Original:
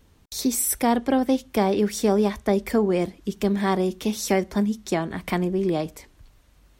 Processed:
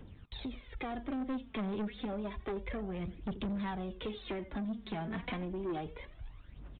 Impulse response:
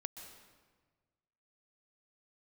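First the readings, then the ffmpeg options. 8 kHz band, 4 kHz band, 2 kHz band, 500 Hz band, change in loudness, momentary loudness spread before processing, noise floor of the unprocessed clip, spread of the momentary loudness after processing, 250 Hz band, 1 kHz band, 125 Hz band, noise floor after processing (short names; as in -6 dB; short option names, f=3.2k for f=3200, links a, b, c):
under -40 dB, -13.5 dB, -12.5 dB, -18.0 dB, -15.5 dB, 6 LU, -57 dBFS, 9 LU, -14.5 dB, -15.5 dB, -12.5 dB, -55 dBFS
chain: -filter_complex "[0:a]equalizer=f=120:t=o:w=0.77:g=2.5,acrossover=split=120[a][b];[a]aeval=exprs='val(0)*gte(abs(val(0)),0.00112)':c=same[c];[b]acompressor=threshold=-31dB:ratio=12[d];[c][d]amix=inputs=2:normalize=0,aecho=1:1:85:0.112,aphaser=in_gain=1:out_gain=1:delay=4.9:decay=0.63:speed=0.3:type=triangular,aresample=8000,asoftclip=type=tanh:threshold=-31dB,aresample=44100,volume=-1.5dB"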